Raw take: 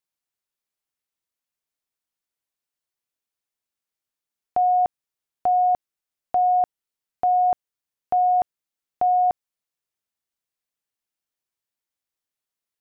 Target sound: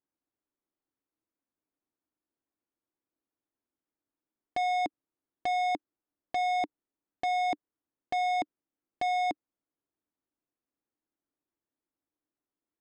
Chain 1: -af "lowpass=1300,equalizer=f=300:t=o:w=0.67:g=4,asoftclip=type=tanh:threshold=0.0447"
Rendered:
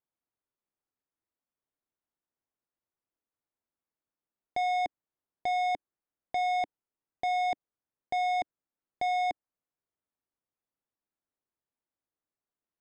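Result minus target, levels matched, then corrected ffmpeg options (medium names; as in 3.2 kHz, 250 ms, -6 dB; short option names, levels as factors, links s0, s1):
250 Hz band -8.5 dB
-af "lowpass=1300,equalizer=f=300:t=o:w=0.67:g=14,asoftclip=type=tanh:threshold=0.0447"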